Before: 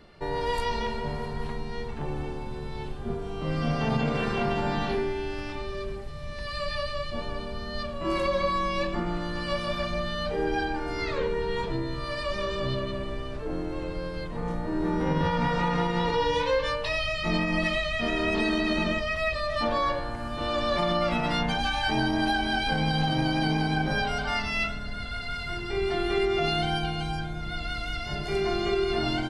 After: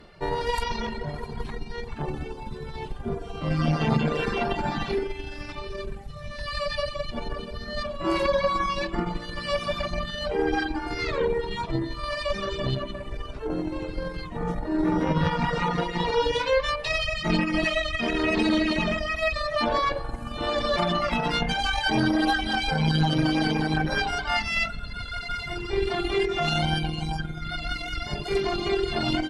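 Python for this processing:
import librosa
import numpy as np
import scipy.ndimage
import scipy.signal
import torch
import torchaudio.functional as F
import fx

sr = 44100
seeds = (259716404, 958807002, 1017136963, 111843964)

y = fx.rev_spring(x, sr, rt60_s=1.8, pass_ms=(45,), chirp_ms=50, drr_db=9.5)
y = fx.cheby_harmonics(y, sr, harmonics=(4,), levels_db=(-19,), full_scale_db=-11.5)
y = fx.dereverb_blind(y, sr, rt60_s=1.7)
y = y * 10.0 ** (3.5 / 20.0)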